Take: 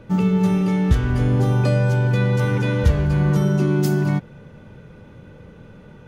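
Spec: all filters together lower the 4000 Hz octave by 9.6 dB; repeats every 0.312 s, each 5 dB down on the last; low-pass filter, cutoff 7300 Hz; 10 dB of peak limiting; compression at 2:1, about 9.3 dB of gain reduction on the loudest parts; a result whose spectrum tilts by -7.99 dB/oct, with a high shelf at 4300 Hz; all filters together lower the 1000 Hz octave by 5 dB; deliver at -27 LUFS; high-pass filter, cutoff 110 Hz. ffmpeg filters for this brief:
-af "highpass=110,lowpass=7.3k,equalizer=f=1k:t=o:g=-5.5,equalizer=f=4k:t=o:g=-8,highshelf=f=4.3k:g=-7.5,acompressor=threshold=-33dB:ratio=2,alimiter=level_in=4dB:limit=-24dB:level=0:latency=1,volume=-4dB,aecho=1:1:312|624|936|1248|1560|1872|2184:0.562|0.315|0.176|0.0988|0.0553|0.031|0.0173,volume=8dB"

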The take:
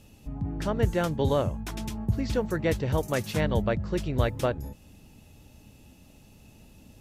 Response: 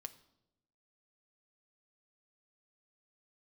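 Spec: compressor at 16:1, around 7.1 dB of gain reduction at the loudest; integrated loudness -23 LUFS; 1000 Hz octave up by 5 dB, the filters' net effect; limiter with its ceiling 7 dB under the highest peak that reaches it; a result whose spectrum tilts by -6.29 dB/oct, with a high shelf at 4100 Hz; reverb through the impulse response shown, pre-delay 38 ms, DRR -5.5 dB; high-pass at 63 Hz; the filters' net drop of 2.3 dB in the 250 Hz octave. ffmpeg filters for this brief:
-filter_complex "[0:a]highpass=63,equalizer=f=250:t=o:g=-3.5,equalizer=f=1k:t=o:g=7,highshelf=f=4.1k:g=-5.5,acompressor=threshold=-26dB:ratio=16,alimiter=limit=-23dB:level=0:latency=1,asplit=2[a][b];[1:a]atrim=start_sample=2205,adelay=38[c];[b][c]afir=irnorm=-1:irlink=0,volume=10.5dB[d];[a][d]amix=inputs=2:normalize=0,volume=4.5dB"

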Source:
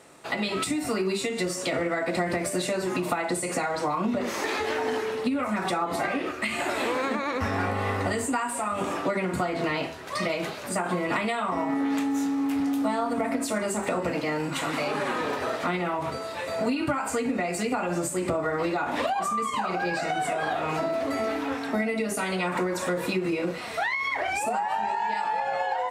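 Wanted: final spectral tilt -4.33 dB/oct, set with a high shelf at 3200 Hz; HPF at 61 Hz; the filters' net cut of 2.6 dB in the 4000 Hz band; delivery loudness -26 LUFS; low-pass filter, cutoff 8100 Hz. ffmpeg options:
-af "highpass=61,lowpass=8.1k,highshelf=f=3.2k:g=6.5,equalizer=f=4k:t=o:g=-8,volume=1.5dB"

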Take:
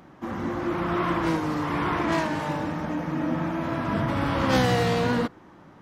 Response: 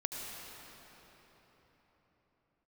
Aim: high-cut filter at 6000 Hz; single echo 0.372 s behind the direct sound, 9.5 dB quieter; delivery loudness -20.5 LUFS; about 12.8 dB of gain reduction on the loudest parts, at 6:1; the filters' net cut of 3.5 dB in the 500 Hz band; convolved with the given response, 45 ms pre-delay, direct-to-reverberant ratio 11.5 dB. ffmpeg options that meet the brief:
-filter_complex "[0:a]lowpass=6k,equalizer=f=500:t=o:g=-4.5,acompressor=threshold=-33dB:ratio=6,aecho=1:1:372:0.335,asplit=2[a][b];[1:a]atrim=start_sample=2205,adelay=45[c];[b][c]afir=irnorm=-1:irlink=0,volume=-14dB[d];[a][d]amix=inputs=2:normalize=0,volume=15.5dB"

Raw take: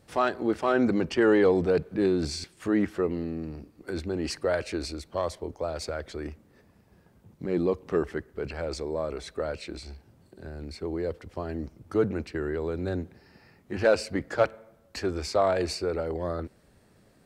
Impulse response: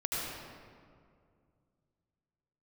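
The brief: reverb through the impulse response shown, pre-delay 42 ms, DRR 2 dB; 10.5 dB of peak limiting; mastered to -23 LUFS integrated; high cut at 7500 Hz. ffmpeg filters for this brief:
-filter_complex "[0:a]lowpass=7.5k,alimiter=limit=-21.5dB:level=0:latency=1,asplit=2[a][b];[1:a]atrim=start_sample=2205,adelay=42[c];[b][c]afir=irnorm=-1:irlink=0,volume=-8dB[d];[a][d]amix=inputs=2:normalize=0,volume=8dB"

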